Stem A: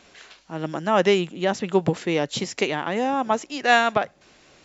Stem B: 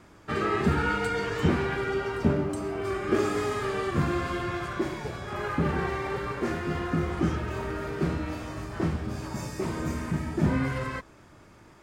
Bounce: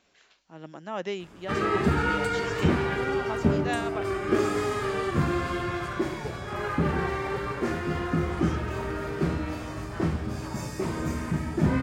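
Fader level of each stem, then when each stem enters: -14.0, +1.0 dB; 0.00, 1.20 s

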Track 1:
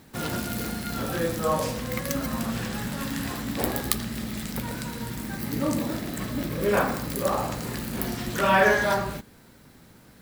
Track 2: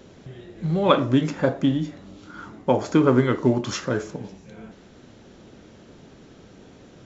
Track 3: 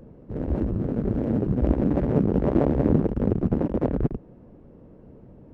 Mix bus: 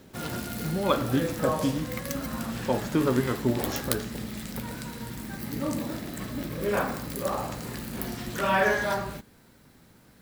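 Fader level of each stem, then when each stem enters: -4.0 dB, -7.0 dB, off; 0.00 s, 0.00 s, off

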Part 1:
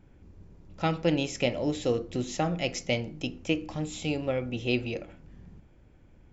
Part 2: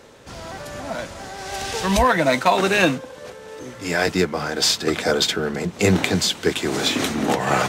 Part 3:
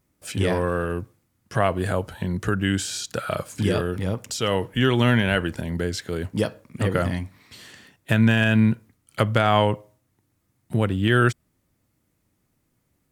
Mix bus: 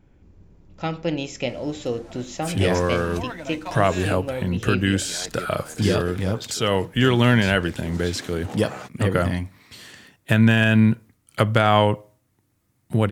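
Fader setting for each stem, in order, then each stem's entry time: +0.5, -17.0, +2.0 dB; 0.00, 1.20, 2.20 s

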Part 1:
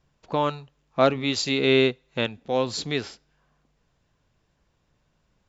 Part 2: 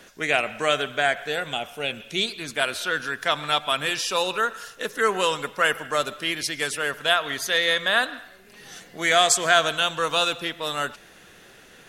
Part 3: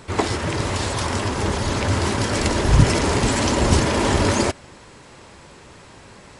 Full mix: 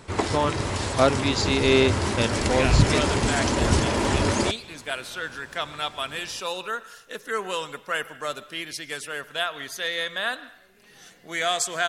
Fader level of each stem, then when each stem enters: 0.0, -6.5, -4.0 dB; 0.00, 2.30, 0.00 s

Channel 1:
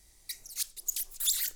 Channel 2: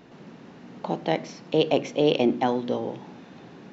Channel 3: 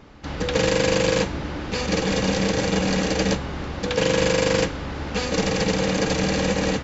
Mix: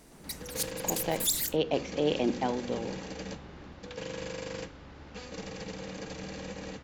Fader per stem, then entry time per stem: 0.0, -7.0, -18.5 dB; 0.00, 0.00, 0.00 s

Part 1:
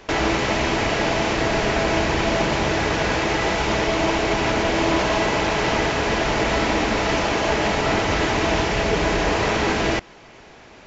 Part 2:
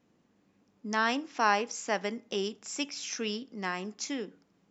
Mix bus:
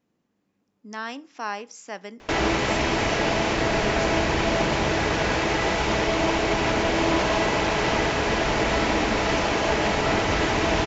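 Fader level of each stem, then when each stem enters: -2.0, -5.0 dB; 2.20, 0.00 s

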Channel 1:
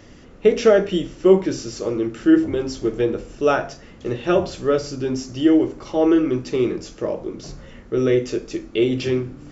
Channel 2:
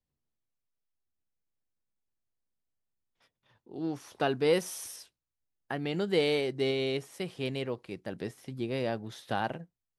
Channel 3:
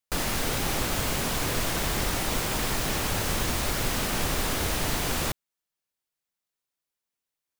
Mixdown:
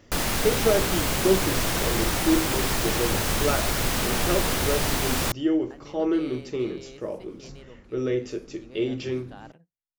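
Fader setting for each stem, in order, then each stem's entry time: -8.0, -14.0, +2.5 dB; 0.00, 0.00, 0.00 s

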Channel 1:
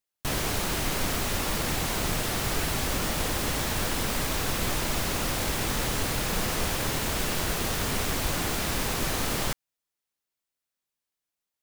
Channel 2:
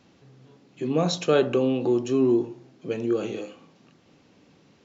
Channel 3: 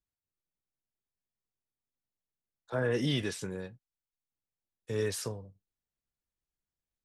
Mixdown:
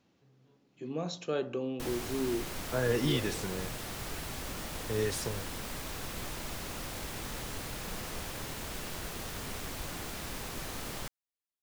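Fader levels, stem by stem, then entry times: -11.5, -12.5, 0.0 dB; 1.55, 0.00, 0.00 s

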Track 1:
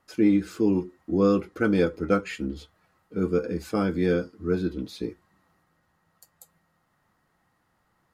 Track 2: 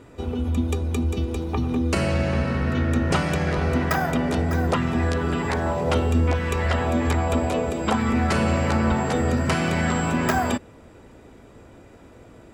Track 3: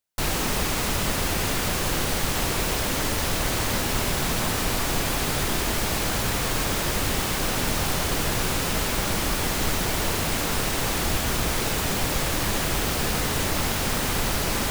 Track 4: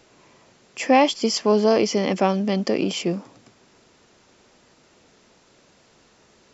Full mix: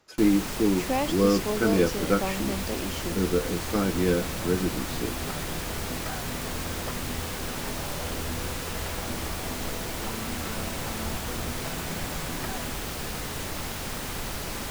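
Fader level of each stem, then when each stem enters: -1.0, -16.0, -8.5, -11.5 dB; 0.00, 2.15, 0.00, 0.00 s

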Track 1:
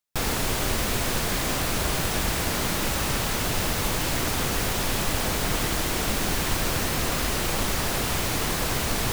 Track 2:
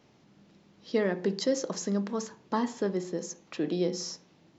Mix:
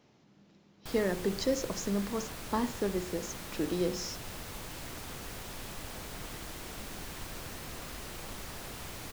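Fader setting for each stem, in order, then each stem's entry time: -17.0, -2.5 dB; 0.70, 0.00 s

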